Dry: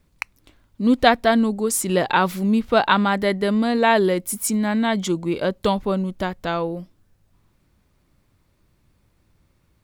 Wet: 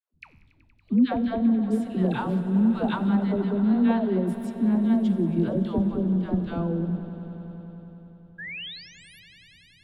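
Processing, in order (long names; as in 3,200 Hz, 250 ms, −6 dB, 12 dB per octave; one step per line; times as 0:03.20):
mu-law and A-law mismatch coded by mu
noise gate −42 dBFS, range −6 dB
octave-band graphic EQ 125/250/500/1,000/2,000/8,000 Hz +8/+8/−4/−5/−9/+5 dB
downward compressor 4 to 1, threshold −20 dBFS, peak gain reduction 13 dB
tuned comb filter 80 Hz, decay 1.3 s, harmonics all, mix 60%
all-pass dispersion lows, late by 133 ms, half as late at 630 Hz
sound drawn into the spectrogram rise, 0:08.38–0:09.20, 1,600–12,000 Hz −36 dBFS
high-frequency loss of the air 440 metres
echo that builds up and dies away 94 ms, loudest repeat 5, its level −17 dB
multiband upward and downward expander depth 40%
level +6.5 dB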